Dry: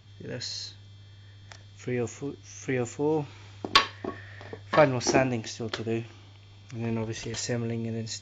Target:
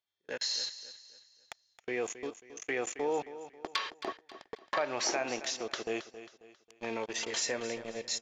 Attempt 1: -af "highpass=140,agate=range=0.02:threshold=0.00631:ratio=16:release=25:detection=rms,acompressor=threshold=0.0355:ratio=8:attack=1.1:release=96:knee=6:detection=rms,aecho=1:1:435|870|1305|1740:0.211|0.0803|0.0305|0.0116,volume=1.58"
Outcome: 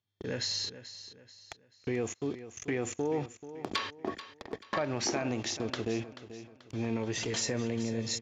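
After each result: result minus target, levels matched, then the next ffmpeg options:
125 Hz band +17.5 dB; echo 165 ms late
-af "highpass=540,agate=range=0.02:threshold=0.00631:ratio=16:release=25:detection=rms,acompressor=threshold=0.0355:ratio=8:attack=1.1:release=96:knee=6:detection=rms,aecho=1:1:435|870|1305|1740:0.211|0.0803|0.0305|0.0116,volume=1.58"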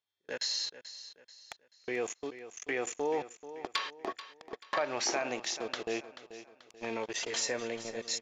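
echo 165 ms late
-af "highpass=540,agate=range=0.02:threshold=0.00631:ratio=16:release=25:detection=rms,acompressor=threshold=0.0355:ratio=8:attack=1.1:release=96:knee=6:detection=rms,aecho=1:1:270|540|810|1080:0.211|0.0803|0.0305|0.0116,volume=1.58"

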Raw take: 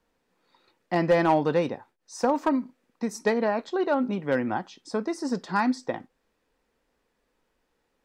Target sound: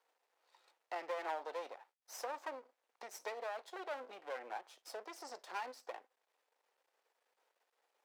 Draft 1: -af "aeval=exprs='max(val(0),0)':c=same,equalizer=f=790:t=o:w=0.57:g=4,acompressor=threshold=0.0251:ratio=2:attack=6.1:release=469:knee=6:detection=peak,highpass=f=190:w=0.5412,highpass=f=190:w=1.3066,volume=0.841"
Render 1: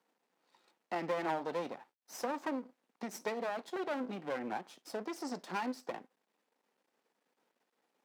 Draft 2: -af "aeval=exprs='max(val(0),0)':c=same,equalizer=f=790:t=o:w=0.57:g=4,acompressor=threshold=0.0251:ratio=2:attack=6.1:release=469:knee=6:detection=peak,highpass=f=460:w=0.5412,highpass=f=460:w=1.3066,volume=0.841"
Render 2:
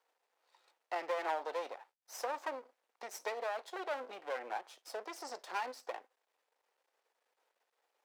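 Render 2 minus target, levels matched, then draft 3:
compression: peak gain reduction -4.5 dB
-af "aeval=exprs='max(val(0),0)':c=same,equalizer=f=790:t=o:w=0.57:g=4,acompressor=threshold=0.00891:ratio=2:attack=6.1:release=469:knee=6:detection=peak,highpass=f=460:w=0.5412,highpass=f=460:w=1.3066,volume=0.841"

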